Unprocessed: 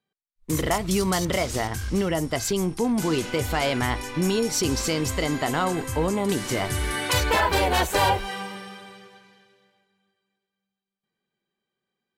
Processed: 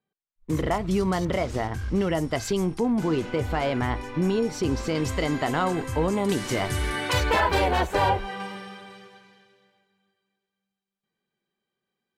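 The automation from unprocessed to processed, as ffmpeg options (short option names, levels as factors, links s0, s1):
-af "asetnsamples=n=441:p=0,asendcmd='2.01 lowpass f 3500;2.8 lowpass f 1400;4.95 lowpass f 3500;6.12 lowpass f 6500;6.9 lowpass f 3600;7.71 lowpass f 1700;8.4 lowpass f 4200;8.9 lowpass f 7400',lowpass=f=1500:p=1"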